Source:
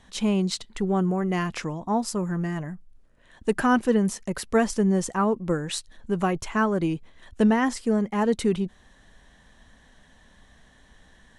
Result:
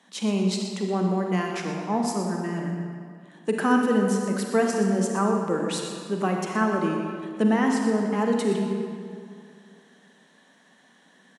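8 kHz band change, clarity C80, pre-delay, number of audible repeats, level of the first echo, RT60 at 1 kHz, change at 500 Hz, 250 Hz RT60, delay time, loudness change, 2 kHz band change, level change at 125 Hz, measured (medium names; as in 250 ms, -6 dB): -0.5 dB, 3.0 dB, 35 ms, 1, -11.5 dB, 2.2 s, +1.0 dB, 2.4 s, 122 ms, 0.0 dB, 0.0 dB, -1.0 dB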